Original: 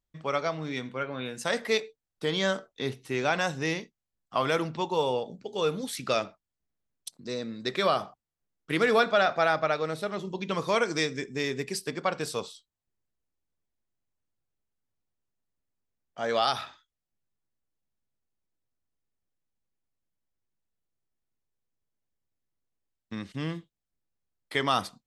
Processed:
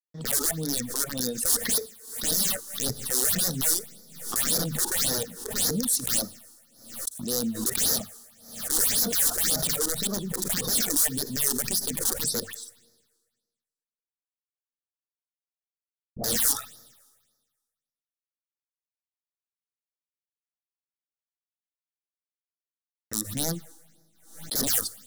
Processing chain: wrapped overs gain 26.5 dB; fifteen-band EQ 400 Hz -4 dB, 1000 Hz -8 dB, 2500 Hz -11 dB, 10000 Hz +5 dB; crossover distortion -53.5 dBFS; 12.4–16.24 dispersion highs, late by 0.129 s, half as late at 1300 Hz; reverb removal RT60 0.53 s; transient shaper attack -5 dB, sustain +1 dB; high shelf 2300 Hz +8.5 dB; notches 50/100/150 Hz; Schroeder reverb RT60 1.5 s, DRR 18.5 dB; phaser stages 6, 1.8 Hz, lowest notch 150–2800 Hz; small resonant body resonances 230/470/1800 Hz, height 7 dB; backwards sustainer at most 90 dB/s; gain +5.5 dB

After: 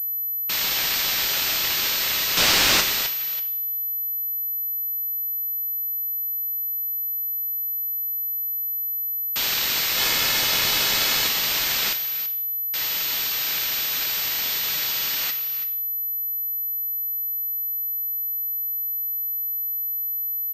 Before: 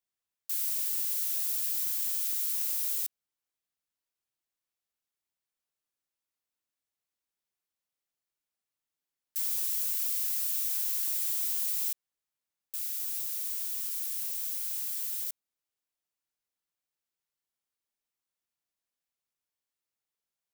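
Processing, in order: on a send: echo 0.331 s -11 dB; 2.37–2.81 on the sum: sample leveller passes 3; two-slope reverb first 0.61 s, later 2.9 s, from -28 dB, DRR 6 dB; spectral gate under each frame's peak -25 dB strong; 9.97–11.28 comb 2.4 ms, depth 91%; in parallel at -11 dB: backlash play -34 dBFS; on the sum: pulse-width modulation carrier 12000 Hz; gain +8 dB

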